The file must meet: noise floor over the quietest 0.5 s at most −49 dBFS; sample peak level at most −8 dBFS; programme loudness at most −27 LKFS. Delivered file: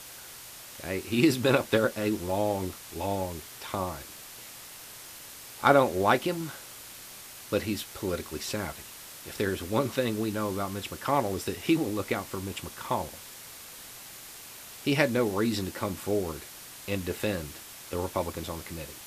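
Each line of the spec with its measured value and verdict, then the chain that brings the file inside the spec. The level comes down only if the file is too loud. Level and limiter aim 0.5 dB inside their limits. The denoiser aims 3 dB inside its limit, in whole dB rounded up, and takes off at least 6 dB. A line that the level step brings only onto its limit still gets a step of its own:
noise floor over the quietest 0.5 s −46 dBFS: out of spec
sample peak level −7.0 dBFS: out of spec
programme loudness −29.5 LKFS: in spec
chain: broadband denoise 6 dB, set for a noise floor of −46 dBFS
brickwall limiter −8.5 dBFS

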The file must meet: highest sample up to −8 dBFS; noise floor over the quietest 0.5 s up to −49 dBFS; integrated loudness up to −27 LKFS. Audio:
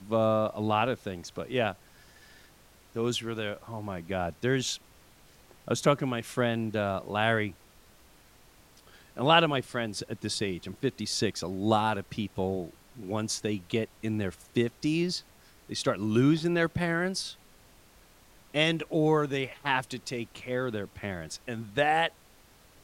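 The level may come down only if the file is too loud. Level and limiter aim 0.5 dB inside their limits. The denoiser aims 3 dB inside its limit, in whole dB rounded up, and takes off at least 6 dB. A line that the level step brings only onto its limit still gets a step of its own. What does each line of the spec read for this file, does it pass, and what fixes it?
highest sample −6.5 dBFS: out of spec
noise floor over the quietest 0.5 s −58 dBFS: in spec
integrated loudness −29.5 LKFS: in spec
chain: brickwall limiter −8.5 dBFS

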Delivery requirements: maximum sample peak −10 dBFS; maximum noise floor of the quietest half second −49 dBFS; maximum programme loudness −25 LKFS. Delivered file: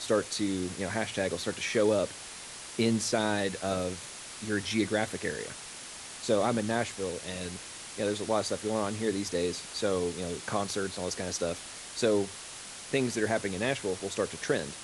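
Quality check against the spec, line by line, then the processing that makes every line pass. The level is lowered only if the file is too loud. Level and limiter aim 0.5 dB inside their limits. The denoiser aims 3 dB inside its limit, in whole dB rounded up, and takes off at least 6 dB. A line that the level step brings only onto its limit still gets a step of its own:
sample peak −14.5 dBFS: in spec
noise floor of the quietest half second −44 dBFS: out of spec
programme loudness −31.5 LKFS: in spec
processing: broadband denoise 8 dB, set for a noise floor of −44 dBFS

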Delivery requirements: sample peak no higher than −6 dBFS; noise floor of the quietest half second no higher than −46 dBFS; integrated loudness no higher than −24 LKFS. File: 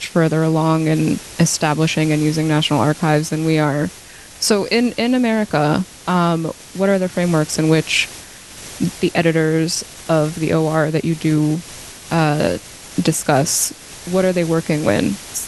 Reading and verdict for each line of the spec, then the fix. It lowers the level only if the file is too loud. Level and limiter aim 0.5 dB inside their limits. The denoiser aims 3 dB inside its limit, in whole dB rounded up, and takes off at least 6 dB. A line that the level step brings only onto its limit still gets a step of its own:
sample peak −3.0 dBFS: out of spec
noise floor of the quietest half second −39 dBFS: out of spec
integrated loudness −17.5 LKFS: out of spec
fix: broadband denoise 6 dB, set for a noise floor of −39 dBFS
level −7 dB

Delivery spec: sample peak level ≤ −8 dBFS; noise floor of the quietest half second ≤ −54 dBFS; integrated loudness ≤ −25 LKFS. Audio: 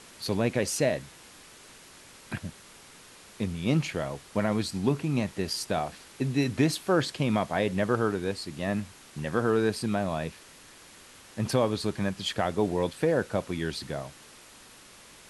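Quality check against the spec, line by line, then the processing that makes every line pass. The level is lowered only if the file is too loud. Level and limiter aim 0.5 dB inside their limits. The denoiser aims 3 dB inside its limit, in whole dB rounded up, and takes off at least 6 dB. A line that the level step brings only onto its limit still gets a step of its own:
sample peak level −12.5 dBFS: in spec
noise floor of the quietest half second −52 dBFS: out of spec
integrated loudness −29.0 LKFS: in spec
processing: broadband denoise 6 dB, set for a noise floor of −52 dBFS

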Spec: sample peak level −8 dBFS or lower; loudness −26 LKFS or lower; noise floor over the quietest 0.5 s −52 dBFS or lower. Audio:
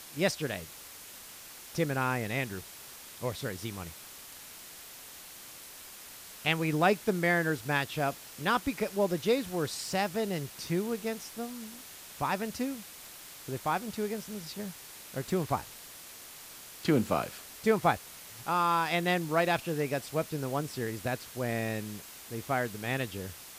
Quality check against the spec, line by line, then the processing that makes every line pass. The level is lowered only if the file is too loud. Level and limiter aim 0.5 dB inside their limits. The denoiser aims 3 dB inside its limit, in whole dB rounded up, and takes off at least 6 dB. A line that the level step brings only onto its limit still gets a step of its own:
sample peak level −13.0 dBFS: in spec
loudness −32.0 LKFS: in spec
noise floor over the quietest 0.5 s −48 dBFS: out of spec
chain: broadband denoise 7 dB, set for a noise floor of −48 dBFS

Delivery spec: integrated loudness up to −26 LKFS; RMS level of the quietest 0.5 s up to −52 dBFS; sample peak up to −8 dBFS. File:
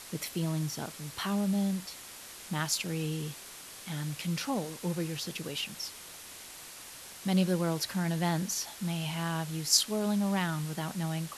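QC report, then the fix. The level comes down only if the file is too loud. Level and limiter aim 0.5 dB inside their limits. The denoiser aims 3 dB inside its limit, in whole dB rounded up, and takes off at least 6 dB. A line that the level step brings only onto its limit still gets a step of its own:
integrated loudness −32.0 LKFS: in spec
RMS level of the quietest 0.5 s −47 dBFS: out of spec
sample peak −11.5 dBFS: in spec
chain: broadband denoise 8 dB, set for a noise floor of −47 dBFS

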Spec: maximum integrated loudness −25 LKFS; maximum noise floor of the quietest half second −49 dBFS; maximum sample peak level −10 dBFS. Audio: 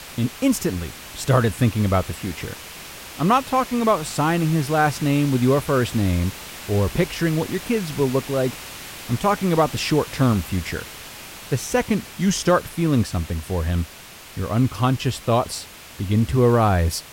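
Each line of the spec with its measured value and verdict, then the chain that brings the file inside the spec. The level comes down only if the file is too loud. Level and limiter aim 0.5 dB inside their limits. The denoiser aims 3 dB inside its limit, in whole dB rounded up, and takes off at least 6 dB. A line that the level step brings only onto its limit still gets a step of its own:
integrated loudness −21.5 LKFS: out of spec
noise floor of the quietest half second −42 dBFS: out of spec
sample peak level −5.5 dBFS: out of spec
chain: broadband denoise 6 dB, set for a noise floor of −42 dBFS
level −4 dB
brickwall limiter −10.5 dBFS

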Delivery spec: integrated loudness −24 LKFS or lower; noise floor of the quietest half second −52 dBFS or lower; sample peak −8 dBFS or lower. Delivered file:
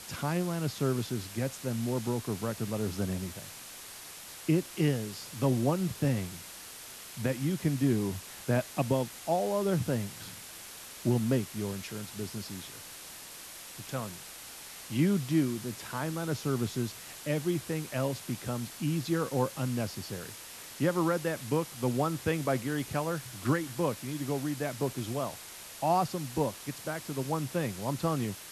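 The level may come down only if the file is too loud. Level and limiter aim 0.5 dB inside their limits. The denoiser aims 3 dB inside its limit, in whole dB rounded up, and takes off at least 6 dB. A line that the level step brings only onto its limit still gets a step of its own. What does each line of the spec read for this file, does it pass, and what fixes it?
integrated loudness −32.0 LKFS: in spec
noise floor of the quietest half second −46 dBFS: out of spec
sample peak −16.0 dBFS: in spec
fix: broadband denoise 9 dB, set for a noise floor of −46 dBFS

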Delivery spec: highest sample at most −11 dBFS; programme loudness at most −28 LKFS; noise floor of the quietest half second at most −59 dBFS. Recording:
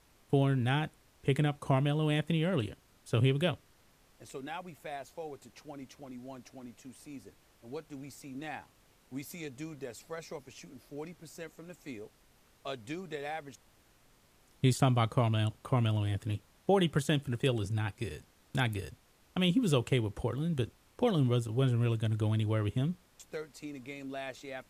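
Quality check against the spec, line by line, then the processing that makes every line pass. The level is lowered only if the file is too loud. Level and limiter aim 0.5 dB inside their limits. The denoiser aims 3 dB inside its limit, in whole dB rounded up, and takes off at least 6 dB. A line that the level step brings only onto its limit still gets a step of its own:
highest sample −14.5 dBFS: in spec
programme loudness −32.5 LKFS: in spec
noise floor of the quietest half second −65 dBFS: in spec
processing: no processing needed

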